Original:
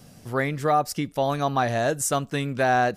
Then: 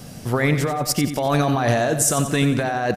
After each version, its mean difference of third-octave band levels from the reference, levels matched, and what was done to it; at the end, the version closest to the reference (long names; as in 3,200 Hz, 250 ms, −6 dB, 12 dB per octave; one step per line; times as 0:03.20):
7.0 dB: compressor whose output falls as the input rises −27 dBFS, ratio −1
on a send: repeating echo 90 ms, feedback 52%, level −10 dB
on the sum: level +7 dB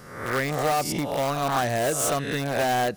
9.0 dB: peak hold with a rise ahead of every peak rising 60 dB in 0.75 s
in parallel at −6.5 dB: wrap-around overflow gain 16.5 dB
on the sum: level −4.5 dB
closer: first